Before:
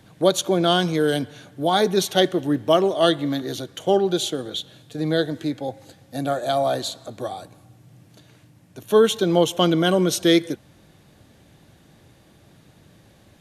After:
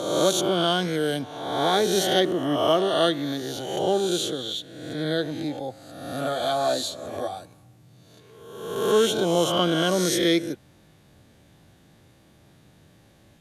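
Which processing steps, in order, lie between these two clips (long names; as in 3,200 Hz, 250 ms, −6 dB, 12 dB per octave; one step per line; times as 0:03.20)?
peak hold with a rise ahead of every peak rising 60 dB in 1.15 s
0:06.17–0:07.39: double-tracking delay 12 ms −4 dB
level −5.5 dB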